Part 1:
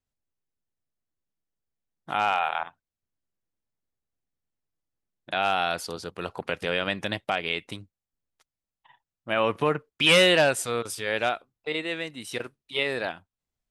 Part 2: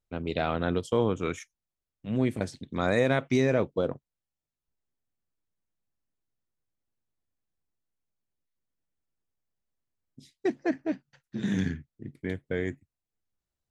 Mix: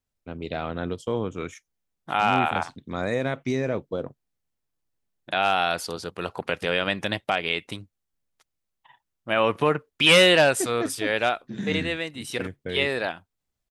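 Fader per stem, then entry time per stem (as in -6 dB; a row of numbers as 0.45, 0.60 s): +2.5, -2.0 dB; 0.00, 0.15 s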